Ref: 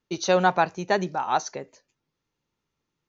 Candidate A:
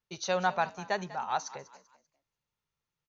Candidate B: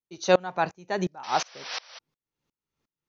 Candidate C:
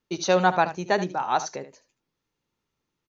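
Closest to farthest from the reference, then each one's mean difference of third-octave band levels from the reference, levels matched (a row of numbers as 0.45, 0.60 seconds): C, A, B; 1.5, 3.5, 6.5 decibels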